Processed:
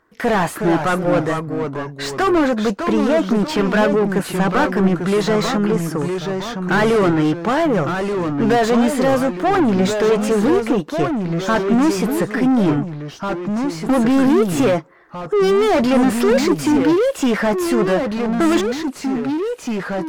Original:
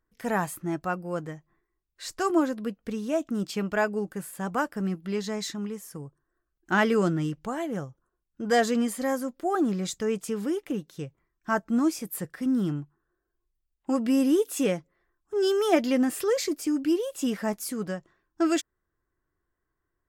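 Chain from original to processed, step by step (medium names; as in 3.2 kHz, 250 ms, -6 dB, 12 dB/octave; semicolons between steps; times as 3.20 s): overdrive pedal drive 34 dB, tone 1.2 kHz, clips at -7 dBFS; ever faster or slower copies 336 ms, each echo -2 st, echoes 2, each echo -6 dB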